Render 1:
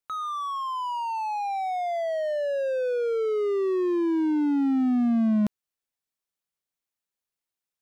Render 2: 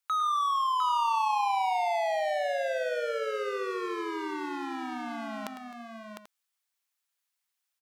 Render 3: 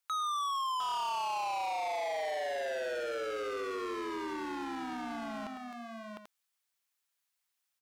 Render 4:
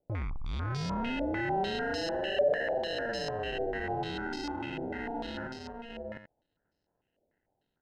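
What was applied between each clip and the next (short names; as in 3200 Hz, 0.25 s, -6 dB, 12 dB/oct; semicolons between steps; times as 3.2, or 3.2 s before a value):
HPF 980 Hz 12 dB/oct; on a send: tapped delay 0.104/0.261/0.704/0.788 s -12/-18/-6/-14.5 dB; on the sum: gain +5 dB
soft clip -32 dBFS, distortion -9 dB
sample-and-hold 38×; stepped low-pass 6.7 Hz 590–5000 Hz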